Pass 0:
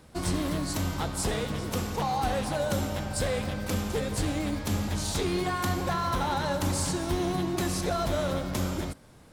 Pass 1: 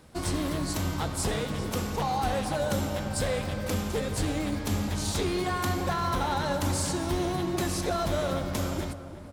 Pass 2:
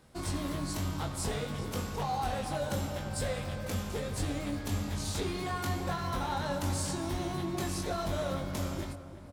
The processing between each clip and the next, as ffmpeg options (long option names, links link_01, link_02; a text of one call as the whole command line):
ffmpeg -i in.wav -filter_complex "[0:a]bandreject=frequency=60:width_type=h:width=6,bandreject=frequency=120:width_type=h:width=6,bandreject=frequency=180:width_type=h:width=6,asplit=2[link_01][link_02];[link_02]adelay=347,lowpass=frequency=1800:poles=1,volume=-12dB,asplit=2[link_03][link_04];[link_04]adelay=347,lowpass=frequency=1800:poles=1,volume=0.53,asplit=2[link_05][link_06];[link_06]adelay=347,lowpass=frequency=1800:poles=1,volume=0.53,asplit=2[link_07][link_08];[link_08]adelay=347,lowpass=frequency=1800:poles=1,volume=0.53,asplit=2[link_09][link_10];[link_10]adelay=347,lowpass=frequency=1800:poles=1,volume=0.53,asplit=2[link_11][link_12];[link_12]adelay=347,lowpass=frequency=1800:poles=1,volume=0.53[link_13];[link_01][link_03][link_05][link_07][link_09][link_11][link_13]amix=inputs=7:normalize=0" out.wav
ffmpeg -i in.wav -filter_complex "[0:a]asplit=2[link_01][link_02];[link_02]adelay=21,volume=-5dB[link_03];[link_01][link_03]amix=inputs=2:normalize=0,volume=-6.5dB" out.wav